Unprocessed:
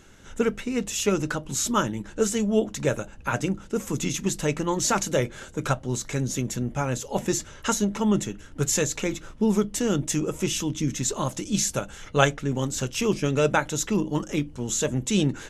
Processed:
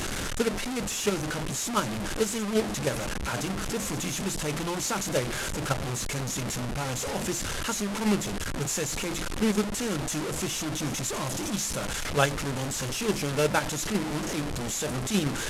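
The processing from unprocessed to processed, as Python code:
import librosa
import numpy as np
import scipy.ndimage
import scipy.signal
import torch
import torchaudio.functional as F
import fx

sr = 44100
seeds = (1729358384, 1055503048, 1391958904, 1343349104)

p1 = fx.delta_mod(x, sr, bps=64000, step_db=-19.0)
p2 = fx.level_steps(p1, sr, step_db=20)
p3 = p1 + (p2 * 10.0 ** (-2.0 / 20.0))
y = p3 * 10.0 ** (-7.5 / 20.0)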